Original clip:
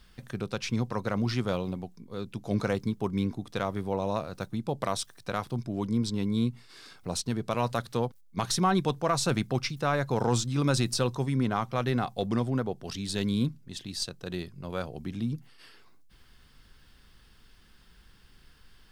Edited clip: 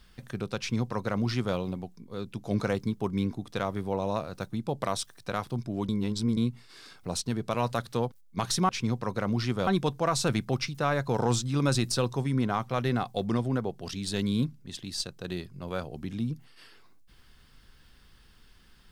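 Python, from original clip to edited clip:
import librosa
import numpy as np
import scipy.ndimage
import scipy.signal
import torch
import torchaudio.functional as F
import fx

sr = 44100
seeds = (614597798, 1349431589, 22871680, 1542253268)

y = fx.edit(x, sr, fx.duplicate(start_s=0.58, length_s=0.98, to_s=8.69),
    fx.reverse_span(start_s=5.89, length_s=0.48), tone=tone)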